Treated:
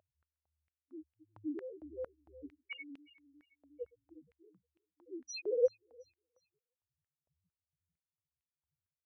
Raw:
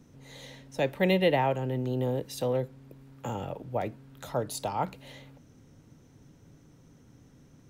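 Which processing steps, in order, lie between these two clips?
phase-vocoder pitch shift without resampling −7 semitones
spectral peaks only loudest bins 1
speed change −15%
on a send: repeating echo 359 ms, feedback 40%, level −21 dB
on the sum: high-pass on a step sequencer 4.4 Hz 620–2,700 Hz
level +11.5 dB

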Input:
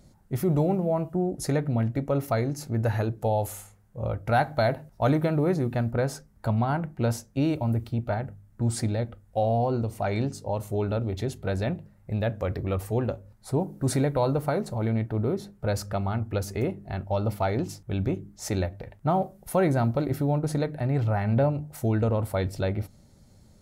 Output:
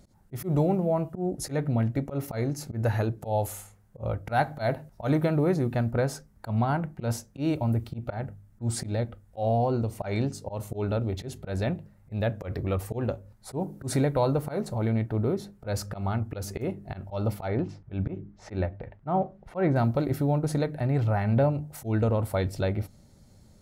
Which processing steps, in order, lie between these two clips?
volume swells 111 ms
0:17.48–0:19.76: low-pass filter 2,400 Hz 12 dB per octave

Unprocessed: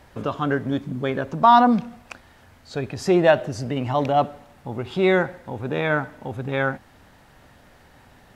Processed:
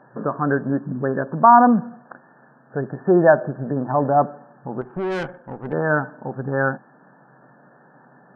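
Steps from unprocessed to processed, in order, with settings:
brick-wall band-pass 120–1,800 Hz
0:04.81–0:05.73: tube saturation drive 24 dB, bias 0.65
level +2.5 dB

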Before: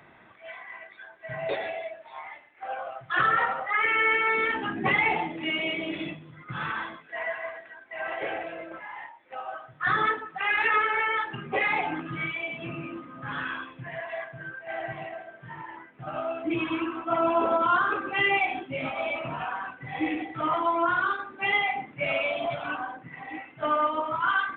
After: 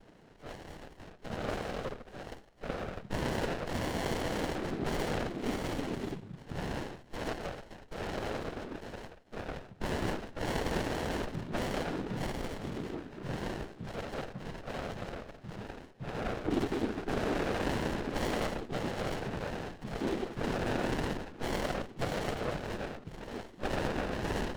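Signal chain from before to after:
tube saturation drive 29 dB, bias 0.55
cochlear-implant simulation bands 6
windowed peak hold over 33 samples
level +3 dB

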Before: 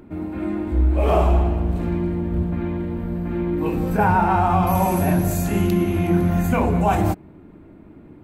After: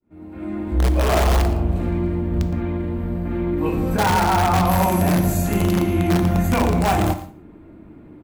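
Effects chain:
fade in at the beginning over 0.87 s
in parallel at −4 dB: wrap-around overflow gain 11 dB
on the sum: single-tap delay 115 ms −15.5 dB
reverb whose tail is shaped and stops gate 210 ms falling, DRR 10.5 dB
level −3.5 dB

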